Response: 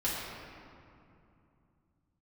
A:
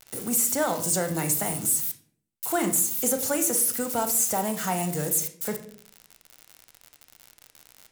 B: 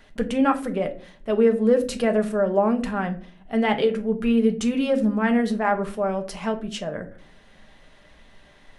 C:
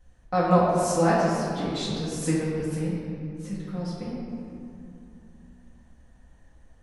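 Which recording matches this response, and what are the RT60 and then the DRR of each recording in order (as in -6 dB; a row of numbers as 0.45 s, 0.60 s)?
C; 0.55 s, 0.45 s, 2.7 s; 6.5 dB, 5.0 dB, -9.5 dB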